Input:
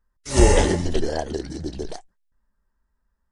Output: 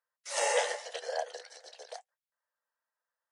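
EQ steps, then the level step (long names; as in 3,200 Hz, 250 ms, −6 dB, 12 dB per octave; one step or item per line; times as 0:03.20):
Chebyshev high-pass with heavy ripple 480 Hz, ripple 3 dB
−5.0 dB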